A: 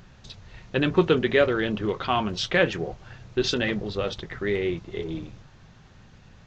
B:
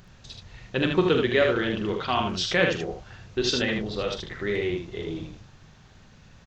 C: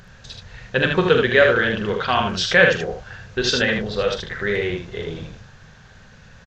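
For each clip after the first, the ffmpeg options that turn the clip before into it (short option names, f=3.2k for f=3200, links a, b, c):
-filter_complex "[0:a]highshelf=f=4.2k:g=5.5,asplit=2[a][b];[b]aecho=0:1:44|77:0.355|0.596[c];[a][c]amix=inputs=2:normalize=0,volume=-2.5dB"
-af "equalizer=f=315:t=o:w=0.33:g=-11,equalizer=f=500:t=o:w=0.33:g=5,equalizer=f=1.6k:t=o:w=0.33:g=9,aresample=32000,aresample=44100,volume=5dB"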